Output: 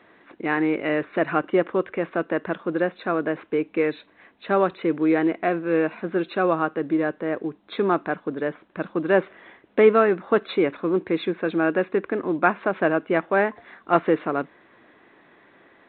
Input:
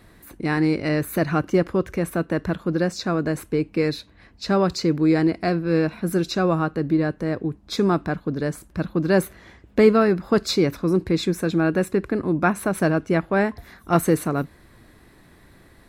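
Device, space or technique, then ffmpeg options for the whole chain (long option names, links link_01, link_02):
telephone: -af "highpass=350,lowpass=3300,volume=2dB" -ar 8000 -c:a pcm_alaw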